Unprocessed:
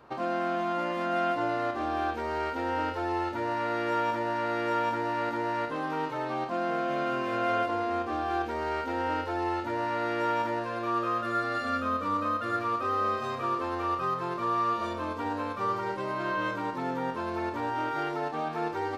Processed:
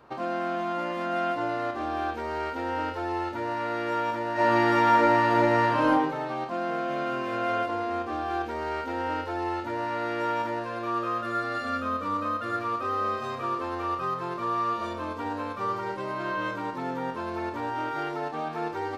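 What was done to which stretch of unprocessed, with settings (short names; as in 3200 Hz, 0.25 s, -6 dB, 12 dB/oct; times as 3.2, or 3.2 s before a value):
4.33–5.88 reverb throw, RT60 1 s, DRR -9 dB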